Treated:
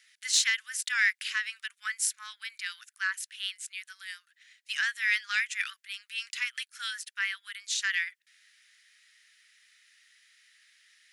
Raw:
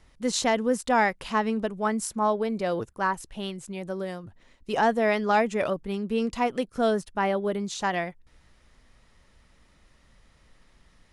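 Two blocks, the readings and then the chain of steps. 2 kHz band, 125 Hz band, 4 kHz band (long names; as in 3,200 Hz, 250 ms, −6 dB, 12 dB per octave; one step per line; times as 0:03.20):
+3.5 dB, below −40 dB, +5.0 dB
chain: Butterworth high-pass 1,600 Hz 48 dB per octave
in parallel at −5 dB: soft clipping −23 dBFS, distortion −17 dB
on the sum: level +1.5 dB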